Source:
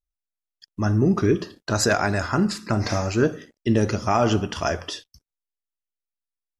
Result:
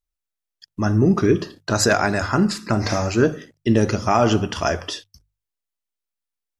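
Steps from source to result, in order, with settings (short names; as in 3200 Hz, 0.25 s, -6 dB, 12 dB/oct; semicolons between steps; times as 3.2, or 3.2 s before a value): notches 50/100/150 Hz; gain +3 dB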